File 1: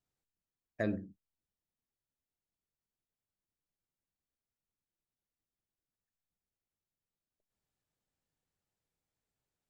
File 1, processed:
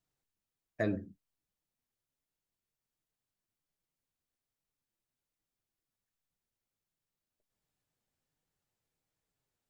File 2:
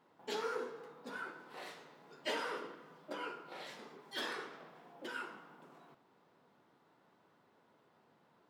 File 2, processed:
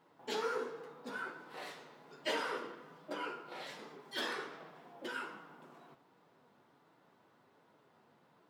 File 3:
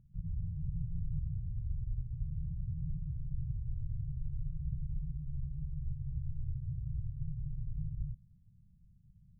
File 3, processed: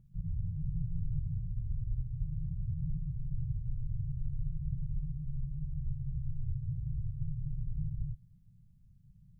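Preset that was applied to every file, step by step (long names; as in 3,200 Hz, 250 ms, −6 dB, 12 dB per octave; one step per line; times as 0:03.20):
flanger 1.3 Hz, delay 6 ms, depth 2.9 ms, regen −52%
level +6 dB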